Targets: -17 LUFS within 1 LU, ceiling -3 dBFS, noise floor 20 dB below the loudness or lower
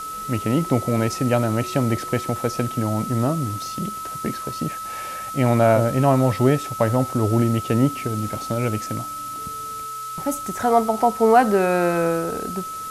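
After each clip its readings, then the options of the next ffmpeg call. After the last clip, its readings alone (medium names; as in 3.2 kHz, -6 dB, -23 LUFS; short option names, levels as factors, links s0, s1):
steady tone 1.3 kHz; tone level -29 dBFS; noise floor -32 dBFS; noise floor target -42 dBFS; loudness -22.0 LUFS; peak level -3.5 dBFS; loudness target -17.0 LUFS
-> -af "bandreject=f=1300:w=30"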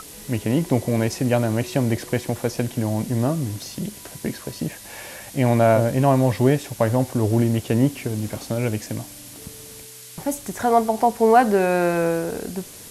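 steady tone not found; noise floor -41 dBFS; noise floor target -42 dBFS
-> -af "afftdn=nr=6:nf=-41"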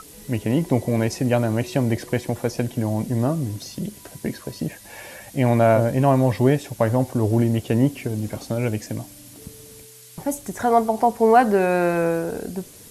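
noise floor -45 dBFS; loudness -21.5 LUFS; peak level -3.5 dBFS; loudness target -17.0 LUFS
-> -af "volume=1.68,alimiter=limit=0.708:level=0:latency=1"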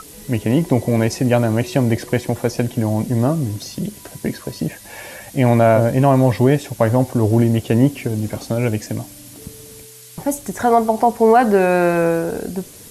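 loudness -17.5 LUFS; peak level -3.0 dBFS; noise floor -40 dBFS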